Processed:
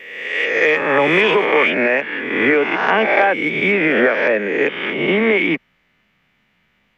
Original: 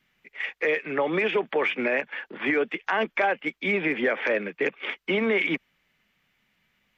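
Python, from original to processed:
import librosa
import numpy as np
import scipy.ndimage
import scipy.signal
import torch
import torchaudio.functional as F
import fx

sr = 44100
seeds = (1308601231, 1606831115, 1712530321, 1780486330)

y = fx.spec_swells(x, sr, rise_s=1.19)
y = fx.high_shelf(y, sr, hz=4500.0, db=fx.steps((0.0, 6.5), (1.44, -5.5), (3.99, -12.0)))
y = F.gain(torch.from_numpy(y), 7.0).numpy()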